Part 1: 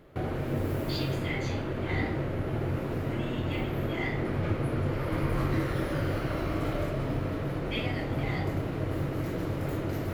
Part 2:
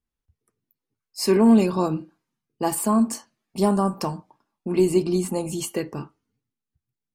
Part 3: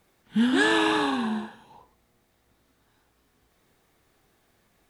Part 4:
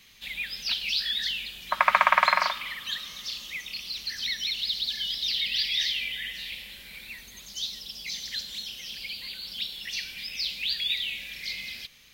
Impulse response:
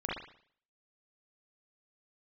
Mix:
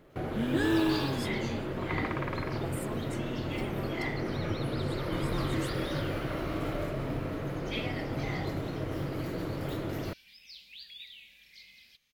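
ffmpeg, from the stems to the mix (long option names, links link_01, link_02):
-filter_complex "[0:a]equalizer=frequency=72:width_type=o:width=1:gain=-6.5,volume=-2dB[link_01];[1:a]acompressor=threshold=-23dB:ratio=6,volume=-16dB[link_02];[2:a]equalizer=frequency=330:width_type=o:width=0.29:gain=13,volume=-12dB[link_03];[3:a]adelay=100,volume=-19dB[link_04];[link_01][link_02][link_03][link_04]amix=inputs=4:normalize=0"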